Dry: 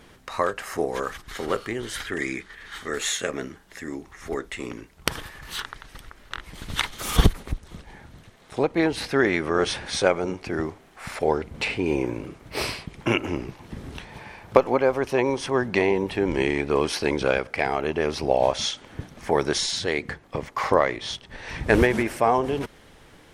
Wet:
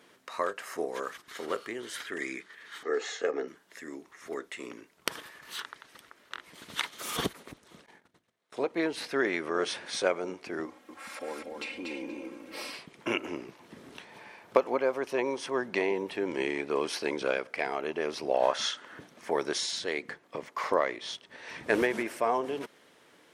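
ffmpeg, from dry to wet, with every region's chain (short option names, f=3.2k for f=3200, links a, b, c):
-filter_complex "[0:a]asettb=1/sr,asplit=3[a][b][c];[a]atrim=end=2.834[d];[b]atrim=start=2.83:end=3.48,asetpts=PTS-STARTPTS,afade=t=in:d=0.004:c=qsin,afade=t=out:st=0.646:d=0.004:c=qsin,highpass=f=150:w=0.5412,highpass=f=150:w=1.3066,equalizer=f=270:t=q:w=4:g=4,equalizer=f=460:t=q:w=4:g=7,equalizer=f=740:t=q:w=4:g=10,equalizer=f=2.4k:t=q:w=4:g=-5,equalizer=f=3.5k:t=q:w=4:g=-9,lowpass=f=5.4k:w=0.5412,lowpass=f=5.4k:w=1.3066,aecho=1:1:2.4:0.44,atrim=end_sample=28665[e];[c]atrim=start=3.476[f];[d][e]acrossfade=d=0.004:c1=hsin:c2=qsin[g];[g][f]acrossfade=d=0.004:c1=qsin:c2=hsin,asettb=1/sr,asplit=3[h][i][j];[h]atrim=end=7.864[k];[i]atrim=start=7.86:end=8.68,asetpts=PTS-STARTPTS,afade=t=in:d=0.004:c=qsin,afade=t=out:st=0.816:d=0.004:c=qsin,agate=range=-20dB:threshold=-45dB:ratio=16:release=100:detection=peak,bandreject=f=50:t=h:w=6,bandreject=f=100:t=h:w=6,bandreject=f=150:t=h:w=6,bandreject=f=200:t=h:w=6,bandreject=f=250:t=h:w=6,bandreject=f=300:t=h:w=6,bandreject=f=350:t=h:w=6,bandreject=f=400:t=h:w=6[l];[j]atrim=start=8.676[m];[k][l]acrossfade=d=0.004:c1=hsin:c2=qsin[n];[n][m]acrossfade=d=0.004:c1=qsin:c2=hsin,asettb=1/sr,asplit=3[o][p][q];[o]atrim=end=10.654[r];[p]atrim=start=10.65:end=12.74,asetpts=PTS-STARTPTS,afade=t=in:d=0.004:c=qsin,afade=t=out:st=2.086:d=0.004:c=qsin,aecho=1:1:3.7:0.97,atrim=end_sample=92169,acompressor=threshold=-34dB:ratio=2:attack=3.2:release=140:knee=1:detection=peak,aecho=1:1:238|476|714:0.631|0.114|0.0204,atrim=end_sample=92169[s];[q]atrim=start=12.736[t];[r][s]acrossfade=d=0.004:c1=hsin:c2=qsin[u];[u][t]acrossfade=d=0.004:c1=qsin:c2=hsin,asettb=1/sr,asplit=3[v][w][x];[v]atrim=end=18.344[y];[w]atrim=start=18.34:end=18.99,asetpts=PTS-STARTPTS,afade=t=in:d=0.004:c=qsin,afade=t=out:st=0.646:d=0.004:c=qsin,equalizer=f=1.5k:t=o:w=1.2:g=11.5,bandreject=f=2.3k:w=9.2[z];[x]atrim=start=18.986[aa];[y][z]acrossfade=d=0.004:c1=hsin:c2=qsin[ab];[ab][aa]acrossfade=d=0.004:c1=qsin:c2=hsin,highpass=270,bandreject=f=800:w=13,volume=-6.5dB"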